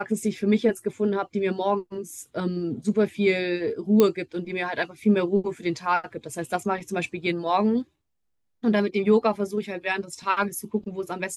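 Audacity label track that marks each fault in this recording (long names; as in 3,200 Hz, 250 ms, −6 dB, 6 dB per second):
4.000000	4.000000	click −6 dBFS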